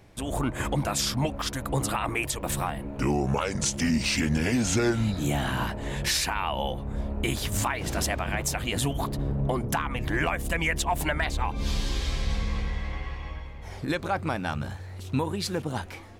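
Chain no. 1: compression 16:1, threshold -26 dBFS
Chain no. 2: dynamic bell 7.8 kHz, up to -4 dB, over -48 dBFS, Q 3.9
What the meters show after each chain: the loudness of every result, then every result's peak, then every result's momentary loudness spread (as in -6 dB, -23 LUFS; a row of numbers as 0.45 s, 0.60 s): -32.0 LUFS, -28.5 LUFS; -16.0 dBFS, -15.0 dBFS; 5 LU, 8 LU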